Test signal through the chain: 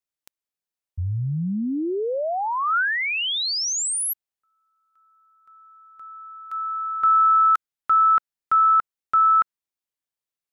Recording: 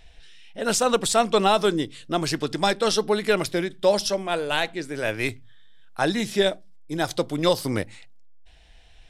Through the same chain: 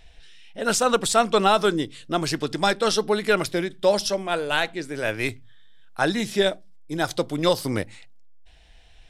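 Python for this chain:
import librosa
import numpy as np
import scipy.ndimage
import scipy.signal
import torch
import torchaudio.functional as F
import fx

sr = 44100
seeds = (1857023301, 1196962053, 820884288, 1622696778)

y = fx.dynamic_eq(x, sr, hz=1400.0, q=3.3, threshold_db=-33.0, ratio=4.0, max_db=5)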